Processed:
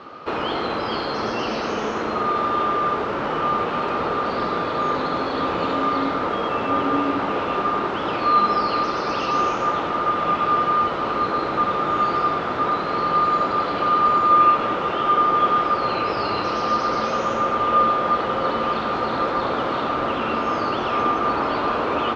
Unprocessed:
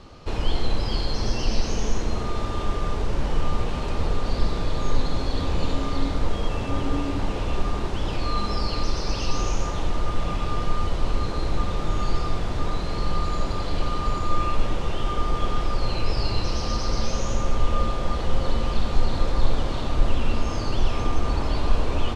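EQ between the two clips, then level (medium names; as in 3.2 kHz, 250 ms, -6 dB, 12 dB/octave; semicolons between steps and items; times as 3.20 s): band-pass 280–2700 Hz; peaking EQ 1.3 kHz +9 dB 0.4 oct; +8.0 dB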